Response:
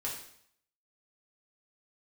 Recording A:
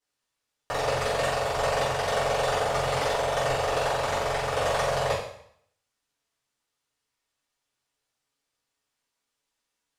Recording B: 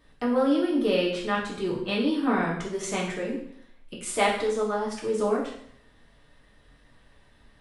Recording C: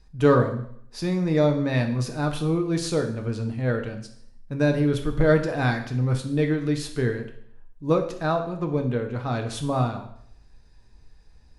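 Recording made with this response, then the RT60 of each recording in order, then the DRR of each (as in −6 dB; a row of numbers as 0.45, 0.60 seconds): B; 0.65, 0.65, 0.65 seconds; −12.5, −5.0, 4.0 decibels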